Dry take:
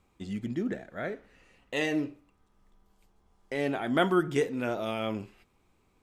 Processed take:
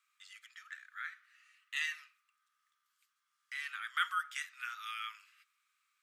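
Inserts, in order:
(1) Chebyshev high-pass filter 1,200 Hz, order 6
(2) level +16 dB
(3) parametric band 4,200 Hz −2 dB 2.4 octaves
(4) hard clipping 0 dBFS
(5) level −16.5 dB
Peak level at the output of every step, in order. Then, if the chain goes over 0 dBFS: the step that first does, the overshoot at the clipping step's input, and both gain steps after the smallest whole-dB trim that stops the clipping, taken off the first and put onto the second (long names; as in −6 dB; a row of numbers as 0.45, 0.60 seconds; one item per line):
−17.0, −1.0, −2.0, −2.0, −18.5 dBFS
no step passes full scale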